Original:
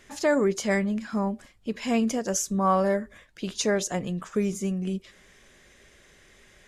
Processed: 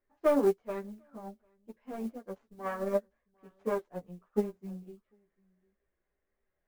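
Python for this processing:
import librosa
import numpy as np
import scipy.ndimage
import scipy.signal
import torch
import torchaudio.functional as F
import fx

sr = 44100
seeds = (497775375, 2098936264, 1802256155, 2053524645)

p1 = fx.self_delay(x, sr, depth_ms=0.25)
p2 = scipy.signal.sosfilt(scipy.signal.butter(2, 1100.0, 'lowpass', fs=sr, output='sos'), p1)
p3 = fx.peak_eq(p2, sr, hz=140.0, db=-7.5, octaves=2.2)
p4 = fx.mod_noise(p3, sr, seeds[0], snr_db=25)
p5 = fx.chorus_voices(p4, sr, voices=6, hz=0.39, base_ms=14, depth_ms=4.2, mix_pct=45)
p6 = p5 + fx.echo_single(p5, sr, ms=750, db=-17.5, dry=0)
p7 = fx.upward_expand(p6, sr, threshold_db=-40.0, expansion=2.5)
y = p7 * 10.0 ** (3.5 / 20.0)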